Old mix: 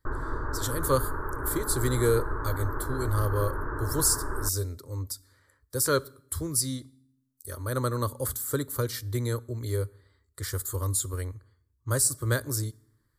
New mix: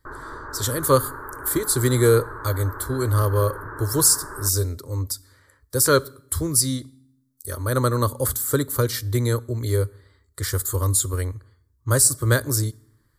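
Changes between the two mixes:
speech +7.5 dB; background: add tilt EQ +2.5 dB/octave

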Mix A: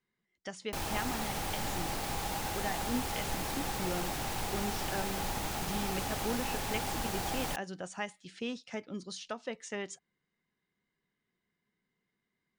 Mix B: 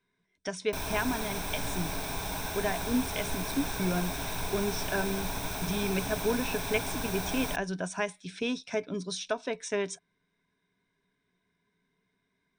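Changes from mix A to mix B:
speech +6.0 dB; master: add rippled EQ curve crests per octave 1.6, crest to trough 10 dB

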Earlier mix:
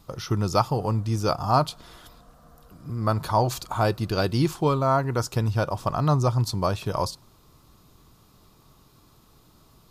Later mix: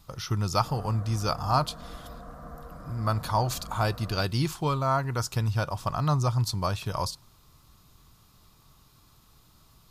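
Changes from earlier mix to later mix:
speech: add peaking EQ 380 Hz -8.5 dB 2.2 oct; background +10.5 dB

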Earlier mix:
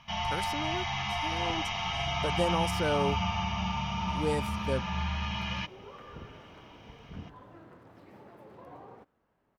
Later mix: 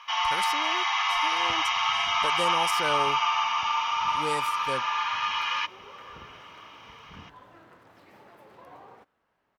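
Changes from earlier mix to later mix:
first sound: add resonant high-pass 1.1 kHz, resonance Q 3.7; master: add tilt shelf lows -6.5 dB, about 660 Hz

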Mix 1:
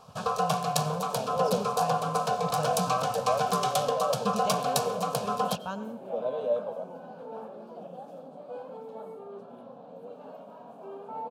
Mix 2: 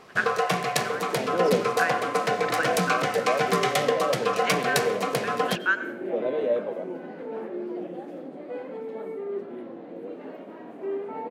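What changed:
speech: add resonant high-pass 1.5 kHz, resonance Q 5.8; master: remove static phaser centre 820 Hz, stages 4

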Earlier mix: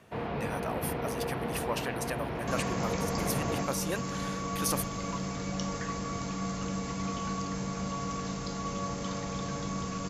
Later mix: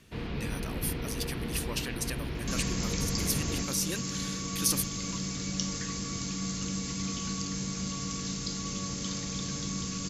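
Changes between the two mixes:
speech: add treble shelf 6.2 kHz -4.5 dB; first sound: remove high-pass 92 Hz; master: add FFT filter 330 Hz 0 dB, 690 Hz -13 dB, 4.5 kHz +8 dB

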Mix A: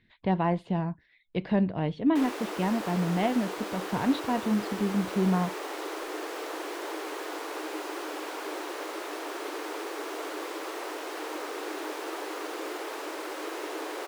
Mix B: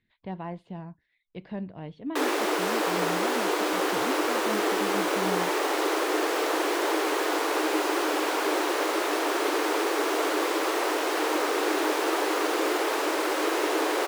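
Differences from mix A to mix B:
speech -10.0 dB; background +10.0 dB

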